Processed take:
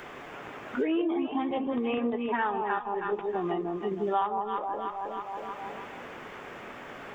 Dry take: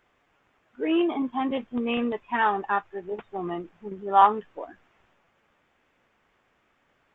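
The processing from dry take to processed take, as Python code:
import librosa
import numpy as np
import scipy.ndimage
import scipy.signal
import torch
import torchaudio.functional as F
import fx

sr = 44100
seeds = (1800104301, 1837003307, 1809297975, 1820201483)

p1 = fx.peak_eq(x, sr, hz=410.0, db=3.0, octaves=0.32)
p2 = p1 + fx.echo_alternate(p1, sr, ms=159, hz=920.0, feedback_pct=54, wet_db=-3, dry=0)
p3 = fx.band_squash(p2, sr, depth_pct=100)
y = p3 * librosa.db_to_amplitude(-5.5)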